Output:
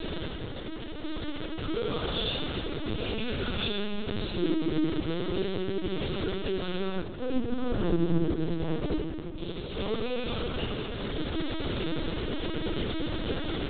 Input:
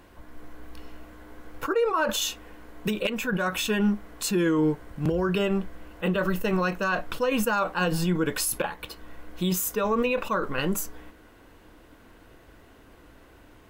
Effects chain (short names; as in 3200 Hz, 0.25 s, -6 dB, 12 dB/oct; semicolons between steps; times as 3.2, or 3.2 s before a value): infinite clipping; 6.81–9.37 tilt -4 dB/oct; shoebox room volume 220 m³, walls hard, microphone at 0.68 m; limiter -1 dBFS, peak gain reduction 11.5 dB; HPF 340 Hz 12 dB/oct; band shelf 1200 Hz -13.5 dB 2.6 oct; LPC vocoder at 8 kHz pitch kept; gain +2 dB